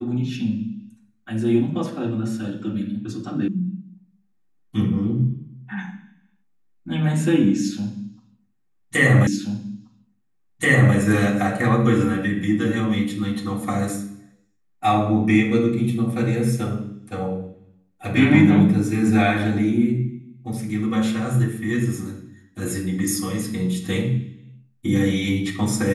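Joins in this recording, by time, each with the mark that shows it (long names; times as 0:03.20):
0:03.48: cut off before it has died away
0:09.27: the same again, the last 1.68 s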